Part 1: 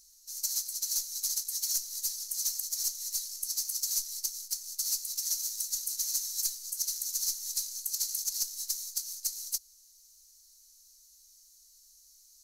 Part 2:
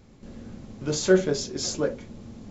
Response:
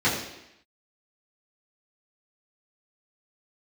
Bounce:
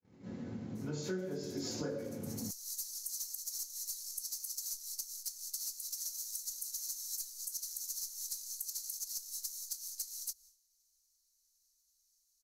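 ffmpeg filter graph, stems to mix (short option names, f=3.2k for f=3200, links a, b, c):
-filter_complex "[0:a]adynamicequalizer=threshold=0.00316:dfrequency=2800:dqfactor=0.84:tfrequency=2800:tqfactor=0.84:attack=5:release=100:ratio=0.375:range=3:mode=cutabove:tftype=bell,adelay=750,volume=0dB[a];[1:a]highpass=110,volume=-7dB,afade=t=in:st=1.36:d=0.32:silence=0.473151,asplit=3[b][c][d];[c]volume=-4.5dB[e];[d]apad=whole_len=581349[f];[a][f]sidechaincompress=threshold=-49dB:ratio=8:attack=16:release=512[g];[2:a]atrim=start_sample=2205[h];[e][h]afir=irnorm=-1:irlink=0[i];[g][b][i]amix=inputs=3:normalize=0,agate=range=-33dB:threshold=-48dB:ratio=3:detection=peak,acompressor=threshold=-38dB:ratio=5"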